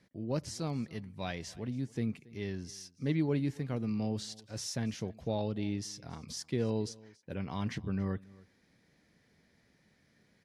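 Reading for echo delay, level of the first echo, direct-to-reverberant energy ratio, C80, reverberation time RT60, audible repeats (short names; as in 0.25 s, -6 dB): 0.279 s, -22.5 dB, none, none, none, 1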